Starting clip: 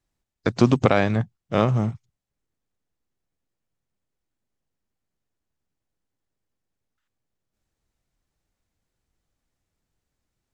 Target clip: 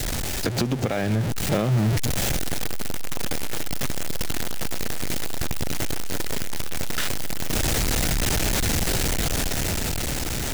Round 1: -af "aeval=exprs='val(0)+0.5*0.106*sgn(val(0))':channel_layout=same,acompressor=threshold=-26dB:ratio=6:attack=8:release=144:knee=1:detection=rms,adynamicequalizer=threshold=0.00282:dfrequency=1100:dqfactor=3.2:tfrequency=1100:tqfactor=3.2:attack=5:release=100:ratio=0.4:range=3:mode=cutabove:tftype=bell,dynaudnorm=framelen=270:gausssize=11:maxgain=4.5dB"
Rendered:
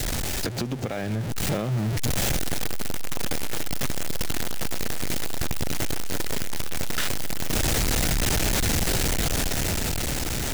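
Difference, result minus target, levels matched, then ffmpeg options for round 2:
downward compressor: peak gain reduction +5 dB
-af "aeval=exprs='val(0)+0.5*0.106*sgn(val(0))':channel_layout=same,acompressor=threshold=-20dB:ratio=6:attack=8:release=144:knee=1:detection=rms,adynamicequalizer=threshold=0.00282:dfrequency=1100:dqfactor=3.2:tfrequency=1100:tqfactor=3.2:attack=5:release=100:ratio=0.4:range=3:mode=cutabove:tftype=bell,dynaudnorm=framelen=270:gausssize=11:maxgain=4.5dB"

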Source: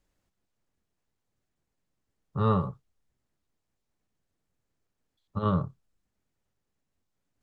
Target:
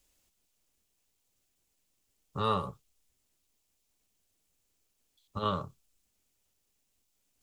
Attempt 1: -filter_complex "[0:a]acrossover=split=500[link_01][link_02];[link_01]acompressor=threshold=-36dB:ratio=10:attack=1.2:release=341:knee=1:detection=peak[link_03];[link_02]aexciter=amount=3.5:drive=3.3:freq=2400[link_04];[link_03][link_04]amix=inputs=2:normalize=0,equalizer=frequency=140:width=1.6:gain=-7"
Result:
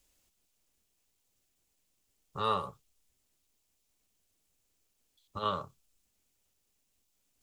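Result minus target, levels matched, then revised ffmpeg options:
downward compressor: peak gain reduction +7.5 dB
-filter_complex "[0:a]acrossover=split=500[link_01][link_02];[link_01]acompressor=threshold=-27.5dB:ratio=10:attack=1.2:release=341:knee=1:detection=peak[link_03];[link_02]aexciter=amount=3.5:drive=3.3:freq=2400[link_04];[link_03][link_04]amix=inputs=2:normalize=0,equalizer=frequency=140:width=1.6:gain=-7"

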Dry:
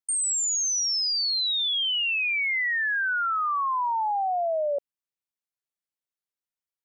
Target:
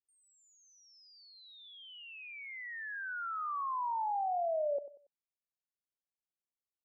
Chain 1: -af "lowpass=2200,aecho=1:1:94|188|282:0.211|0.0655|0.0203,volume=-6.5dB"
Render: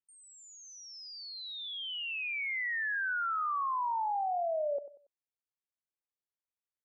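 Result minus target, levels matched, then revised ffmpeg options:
2,000 Hz band +5.5 dB
-af "lowpass=1000,aecho=1:1:94|188|282:0.211|0.0655|0.0203,volume=-6.5dB"

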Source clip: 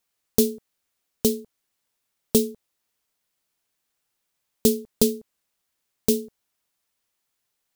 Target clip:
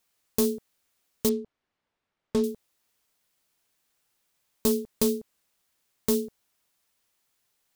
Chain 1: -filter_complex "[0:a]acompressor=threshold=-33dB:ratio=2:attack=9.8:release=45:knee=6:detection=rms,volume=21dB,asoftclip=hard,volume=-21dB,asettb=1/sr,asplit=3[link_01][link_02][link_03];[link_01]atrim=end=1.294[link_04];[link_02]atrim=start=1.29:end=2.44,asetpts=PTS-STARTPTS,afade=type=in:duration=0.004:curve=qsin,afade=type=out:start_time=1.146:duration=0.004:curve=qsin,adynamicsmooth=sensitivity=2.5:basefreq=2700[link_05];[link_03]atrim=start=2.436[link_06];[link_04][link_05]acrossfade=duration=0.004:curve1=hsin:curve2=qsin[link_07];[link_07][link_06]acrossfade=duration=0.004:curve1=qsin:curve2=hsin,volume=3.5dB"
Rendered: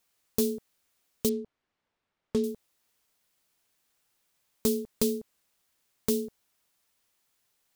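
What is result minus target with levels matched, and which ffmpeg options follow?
downward compressor: peak gain reduction +4 dB
-filter_complex "[0:a]acompressor=threshold=-25dB:ratio=2:attack=9.8:release=45:knee=6:detection=rms,volume=21dB,asoftclip=hard,volume=-21dB,asettb=1/sr,asplit=3[link_01][link_02][link_03];[link_01]atrim=end=1.294[link_04];[link_02]atrim=start=1.29:end=2.44,asetpts=PTS-STARTPTS,afade=type=in:duration=0.004:curve=qsin,afade=type=out:start_time=1.146:duration=0.004:curve=qsin,adynamicsmooth=sensitivity=2.5:basefreq=2700[link_05];[link_03]atrim=start=2.436[link_06];[link_04][link_05]acrossfade=duration=0.004:curve1=hsin:curve2=qsin[link_07];[link_07][link_06]acrossfade=duration=0.004:curve1=qsin:curve2=hsin,volume=3.5dB"

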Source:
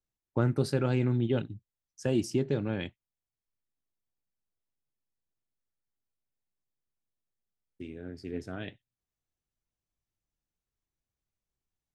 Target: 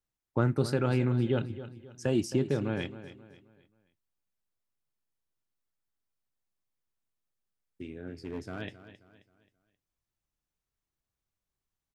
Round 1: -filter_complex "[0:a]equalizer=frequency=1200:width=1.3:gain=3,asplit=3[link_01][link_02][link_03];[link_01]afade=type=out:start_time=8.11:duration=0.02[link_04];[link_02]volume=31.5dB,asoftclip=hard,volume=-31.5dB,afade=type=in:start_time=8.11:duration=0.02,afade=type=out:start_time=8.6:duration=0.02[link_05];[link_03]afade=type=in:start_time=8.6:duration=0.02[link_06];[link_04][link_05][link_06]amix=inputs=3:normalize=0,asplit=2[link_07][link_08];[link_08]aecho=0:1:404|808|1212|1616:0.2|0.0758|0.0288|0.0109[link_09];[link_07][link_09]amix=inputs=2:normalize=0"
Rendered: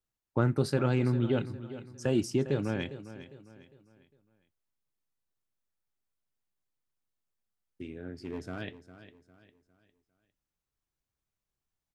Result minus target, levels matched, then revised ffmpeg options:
echo 138 ms late
-filter_complex "[0:a]equalizer=frequency=1200:width=1.3:gain=3,asplit=3[link_01][link_02][link_03];[link_01]afade=type=out:start_time=8.11:duration=0.02[link_04];[link_02]volume=31.5dB,asoftclip=hard,volume=-31.5dB,afade=type=in:start_time=8.11:duration=0.02,afade=type=out:start_time=8.6:duration=0.02[link_05];[link_03]afade=type=in:start_time=8.6:duration=0.02[link_06];[link_04][link_05][link_06]amix=inputs=3:normalize=0,asplit=2[link_07][link_08];[link_08]aecho=0:1:266|532|798|1064:0.2|0.0758|0.0288|0.0109[link_09];[link_07][link_09]amix=inputs=2:normalize=0"

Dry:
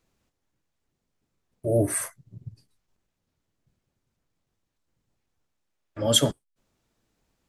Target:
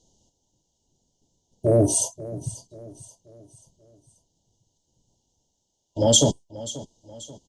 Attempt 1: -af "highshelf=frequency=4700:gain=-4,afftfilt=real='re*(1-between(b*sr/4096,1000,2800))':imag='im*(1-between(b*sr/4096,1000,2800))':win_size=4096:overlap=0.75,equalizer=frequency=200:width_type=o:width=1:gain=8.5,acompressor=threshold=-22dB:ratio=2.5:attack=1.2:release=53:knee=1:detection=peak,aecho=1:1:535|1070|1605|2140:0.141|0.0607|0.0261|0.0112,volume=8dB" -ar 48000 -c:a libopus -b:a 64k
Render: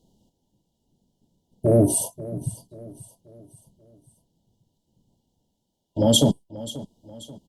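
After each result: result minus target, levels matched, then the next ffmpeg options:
8,000 Hz band −4.0 dB; 250 Hz band +4.0 dB
-af "lowpass=frequency=6500:width_type=q:width=5.2,highshelf=frequency=4700:gain=-4,afftfilt=real='re*(1-between(b*sr/4096,1000,2800))':imag='im*(1-between(b*sr/4096,1000,2800))':win_size=4096:overlap=0.75,equalizer=frequency=200:width_type=o:width=1:gain=8.5,acompressor=threshold=-22dB:ratio=2.5:attack=1.2:release=53:knee=1:detection=peak,aecho=1:1:535|1070|1605|2140:0.141|0.0607|0.0261|0.0112,volume=8dB" -ar 48000 -c:a libopus -b:a 64k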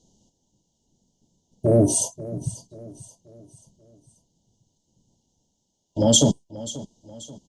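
250 Hz band +3.0 dB
-af "lowpass=frequency=6500:width_type=q:width=5.2,highshelf=frequency=4700:gain=-4,afftfilt=real='re*(1-between(b*sr/4096,1000,2800))':imag='im*(1-between(b*sr/4096,1000,2800))':win_size=4096:overlap=0.75,acompressor=threshold=-22dB:ratio=2.5:attack=1.2:release=53:knee=1:detection=peak,aecho=1:1:535|1070|1605|2140:0.141|0.0607|0.0261|0.0112,volume=8dB" -ar 48000 -c:a libopus -b:a 64k

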